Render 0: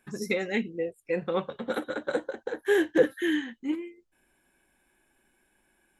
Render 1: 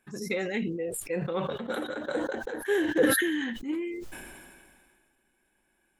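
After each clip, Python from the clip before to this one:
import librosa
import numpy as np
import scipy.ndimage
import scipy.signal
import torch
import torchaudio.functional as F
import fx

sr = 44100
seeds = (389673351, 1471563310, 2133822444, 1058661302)

y = fx.sustainer(x, sr, db_per_s=30.0)
y = y * librosa.db_to_amplitude(-3.5)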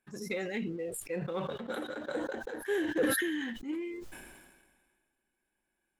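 y = fx.leveller(x, sr, passes=1)
y = y * librosa.db_to_amplitude(-8.5)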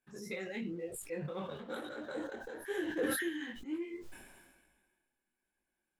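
y = fx.detune_double(x, sr, cents=37)
y = y * librosa.db_to_amplitude(-1.0)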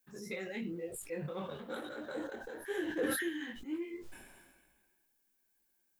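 y = fx.dmg_noise_colour(x, sr, seeds[0], colour='violet', level_db=-77.0)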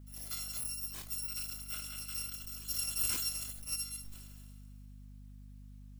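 y = fx.bit_reversed(x, sr, seeds[1], block=256)
y = fx.add_hum(y, sr, base_hz=50, snr_db=10)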